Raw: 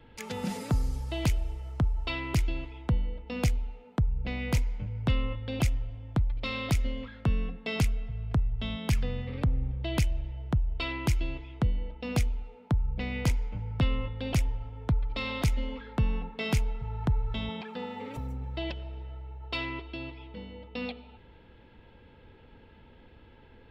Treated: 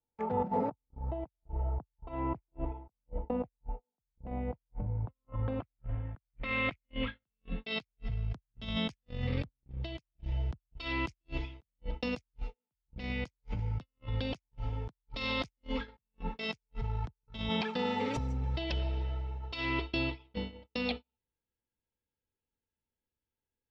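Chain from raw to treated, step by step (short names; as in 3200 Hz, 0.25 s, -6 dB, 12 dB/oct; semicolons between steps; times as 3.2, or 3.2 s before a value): negative-ratio compressor -37 dBFS, ratio -1; gate -35 dBFS, range -46 dB; low-pass sweep 820 Hz -> 5700 Hz, 4.89–8.27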